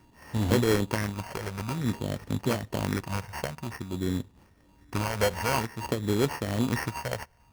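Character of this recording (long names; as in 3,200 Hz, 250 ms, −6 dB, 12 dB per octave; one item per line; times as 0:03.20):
a buzz of ramps at a fixed pitch in blocks of 16 samples
phaser sweep stages 6, 0.52 Hz, lowest notch 280–4,200 Hz
aliases and images of a low sample rate 3,700 Hz, jitter 0%
amplitude modulation by smooth noise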